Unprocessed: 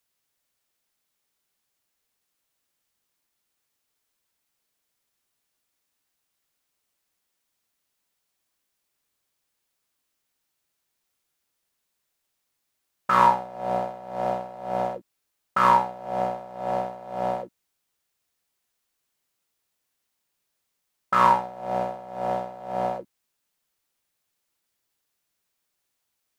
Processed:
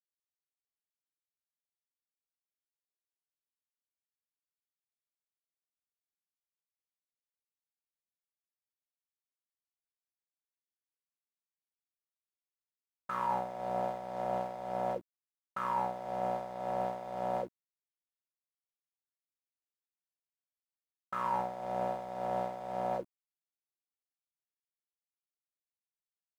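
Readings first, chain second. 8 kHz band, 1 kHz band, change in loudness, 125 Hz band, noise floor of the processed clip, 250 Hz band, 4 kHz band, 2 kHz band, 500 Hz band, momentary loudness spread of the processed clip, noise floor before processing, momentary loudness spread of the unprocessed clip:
no reading, -11.5 dB, -11.0 dB, -8.5 dB, under -85 dBFS, -8.5 dB, -13.5 dB, -14.5 dB, -7.5 dB, 6 LU, -79 dBFS, 14 LU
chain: dynamic bell 4.4 kHz, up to -5 dB, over -40 dBFS, Q 0.86; reverse; compression 10:1, threshold -30 dBFS, peak gain reduction 17 dB; reverse; crossover distortion -58 dBFS

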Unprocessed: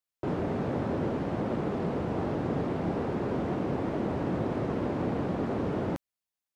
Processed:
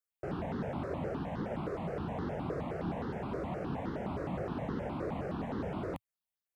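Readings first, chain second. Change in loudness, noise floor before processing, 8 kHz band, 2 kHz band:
-6.5 dB, under -85 dBFS, no reading, -4.5 dB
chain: peaking EQ 110 Hz -6 dB 0.47 oct; stepped phaser 9.6 Hz 840–2400 Hz; trim -2 dB

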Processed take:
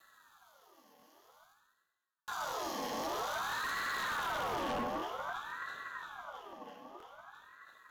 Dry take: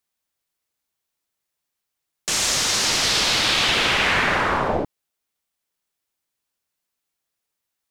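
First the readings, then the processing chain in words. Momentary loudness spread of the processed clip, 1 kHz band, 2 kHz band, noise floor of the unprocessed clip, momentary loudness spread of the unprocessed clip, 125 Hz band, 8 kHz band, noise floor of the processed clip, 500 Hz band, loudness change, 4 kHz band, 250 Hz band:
18 LU, -10.5 dB, -16.5 dB, -82 dBFS, 8 LU, -20.5 dB, -24.5 dB, -82 dBFS, -12.5 dB, -19.5 dB, -24.0 dB, -13.5 dB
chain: median filter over 41 samples; high-order bell 760 Hz -15 dB 1.1 oct; echo whose repeats swap between lows and highs 166 ms, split 1.4 kHz, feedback 72%, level -6 dB; reverse; upward compressor, threshold -33 dBFS; reverse; flange 0.46 Hz, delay 9.9 ms, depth 4.1 ms, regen -41%; rippled EQ curve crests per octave 0.82, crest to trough 17 dB; hard clipper -31 dBFS, distortion -7 dB; crackling interface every 0.50 s, samples 1024, repeat, from 0.48 s; ring modulator with a swept carrier 1.1 kHz, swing 40%, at 0.52 Hz

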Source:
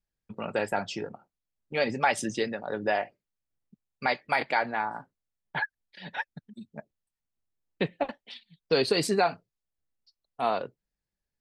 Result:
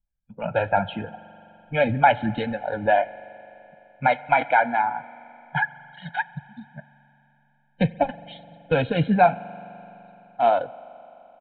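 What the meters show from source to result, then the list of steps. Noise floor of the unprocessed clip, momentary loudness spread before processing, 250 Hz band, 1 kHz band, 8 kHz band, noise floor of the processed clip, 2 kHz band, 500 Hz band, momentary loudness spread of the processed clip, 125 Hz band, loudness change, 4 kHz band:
under -85 dBFS, 20 LU, +7.0 dB, +9.0 dB, under -35 dB, -64 dBFS, +5.0 dB, +5.5 dB, 22 LU, +12.0 dB, +6.5 dB, -3.0 dB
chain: coarse spectral quantiser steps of 15 dB; tilt EQ -2 dB/octave; comb 1.3 ms, depth 96%; spectral noise reduction 12 dB; resampled via 8 kHz; spring tank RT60 3.4 s, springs 42 ms, chirp 50 ms, DRR 17 dB; trim +3.5 dB

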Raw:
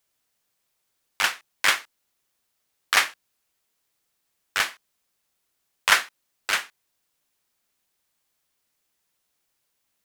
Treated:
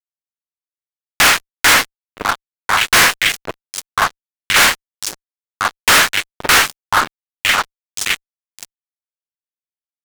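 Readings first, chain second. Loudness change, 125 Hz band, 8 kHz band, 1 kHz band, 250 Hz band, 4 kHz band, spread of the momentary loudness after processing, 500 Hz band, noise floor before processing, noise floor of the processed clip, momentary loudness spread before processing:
+9.5 dB, no reading, +15.0 dB, +14.5 dB, +22.0 dB, +13.0 dB, 15 LU, +16.5 dB, -76 dBFS, under -85 dBFS, 9 LU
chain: on a send: repeats whose band climbs or falls 524 ms, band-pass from 400 Hz, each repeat 1.4 oct, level -10 dB; on the sum: wow and flutter 23 cents; frequency shift -94 Hz; fuzz box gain 42 dB, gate -44 dBFS; trim +5 dB

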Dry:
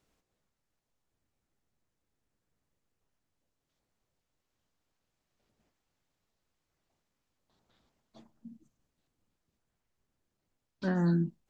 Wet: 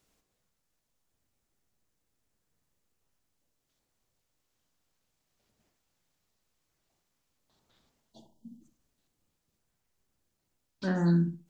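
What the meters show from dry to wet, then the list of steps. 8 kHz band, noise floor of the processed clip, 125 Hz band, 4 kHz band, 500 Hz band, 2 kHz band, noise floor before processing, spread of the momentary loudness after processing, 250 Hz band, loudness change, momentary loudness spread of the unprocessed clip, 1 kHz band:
no reading, -81 dBFS, +2.5 dB, +4.5 dB, +1.0 dB, +1.5 dB, -84 dBFS, 9 LU, +2.0 dB, +2.0 dB, 7 LU, +1.5 dB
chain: treble shelf 3.8 kHz +8 dB; time-frequency box 8.12–8.61 s, 1–2.8 kHz -25 dB; filtered feedback delay 64 ms, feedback 23%, low-pass 2 kHz, level -7 dB

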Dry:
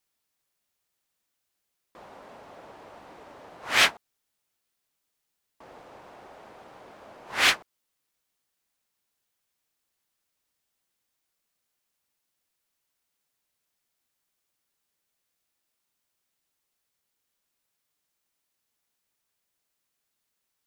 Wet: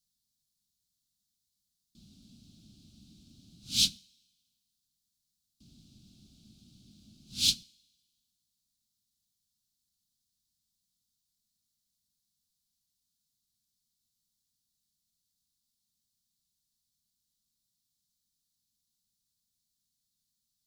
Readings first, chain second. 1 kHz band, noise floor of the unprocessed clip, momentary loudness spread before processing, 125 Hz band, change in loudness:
under -35 dB, -81 dBFS, 11 LU, +3.5 dB, -5.0 dB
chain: elliptic band-stop 220–4000 Hz, stop band 40 dB; treble shelf 9 kHz -8.5 dB; two-slope reverb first 0.46 s, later 1.6 s, from -18 dB, DRR 19.5 dB; trim +4 dB

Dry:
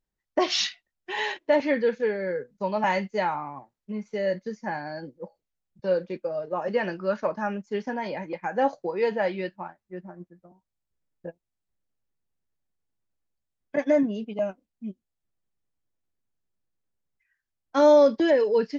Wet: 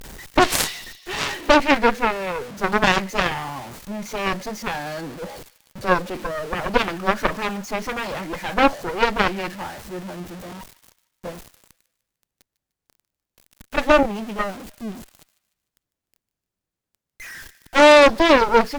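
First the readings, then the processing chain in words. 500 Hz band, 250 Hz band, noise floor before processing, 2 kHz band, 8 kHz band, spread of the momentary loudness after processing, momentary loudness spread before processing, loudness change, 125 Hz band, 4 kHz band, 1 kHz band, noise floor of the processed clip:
+3.0 dB, +4.5 dB, -85 dBFS, +11.5 dB, no reading, 20 LU, 19 LU, +6.0 dB, +8.0 dB, +9.0 dB, +9.5 dB, under -85 dBFS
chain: jump at every zero crossing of -34 dBFS; feedback echo behind a high-pass 150 ms, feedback 44%, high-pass 1.6 kHz, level -18 dB; Chebyshev shaper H 4 -7 dB, 7 -11 dB, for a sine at -9.5 dBFS; trim +3.5 dB

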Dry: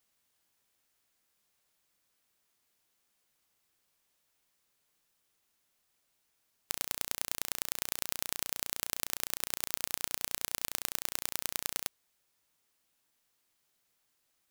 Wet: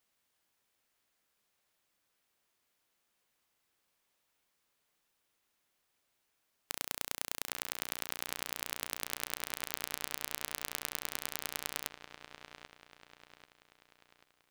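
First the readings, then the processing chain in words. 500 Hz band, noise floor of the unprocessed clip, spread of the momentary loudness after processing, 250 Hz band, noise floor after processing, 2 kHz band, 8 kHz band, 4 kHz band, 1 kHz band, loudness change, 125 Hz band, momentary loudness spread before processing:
+0.5 dB, -77 dBFS, 15 LU, -0.5 dB, -80 dBFS, +0.5 dB, -3.5 dB, -1.5 dB, +0.5 dB, -3.0 dB, -2.0 dB, 1 LU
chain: tone controls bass -3 dB, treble -4 dB; feedback echo behind a low-pass 788 ms, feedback 45%, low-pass 3.3 kHz, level -8.5 dB

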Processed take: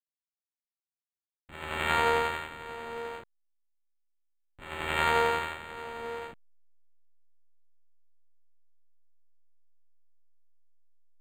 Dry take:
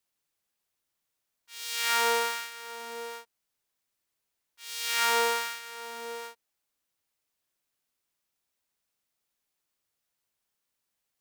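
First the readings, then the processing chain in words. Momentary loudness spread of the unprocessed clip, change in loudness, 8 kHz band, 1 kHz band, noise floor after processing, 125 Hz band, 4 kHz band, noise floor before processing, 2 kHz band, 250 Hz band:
18 LU, -1.0 dB, -14.5 dB, +1.0 dB, under -85 dBFS, no reading, -6.5 dB, -83 dBFS, -0.5 dB, +9.0 dB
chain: send-on-delta sampling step -43 dBFS; decimation joined by straight lines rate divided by 8×; trim +1.5 dB

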